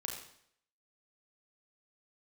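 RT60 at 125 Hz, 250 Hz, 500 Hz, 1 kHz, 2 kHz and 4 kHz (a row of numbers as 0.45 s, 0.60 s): 0.65 s, 0.65 s, 0.65 s, 0.65 s, 0.65 s, 0.65 s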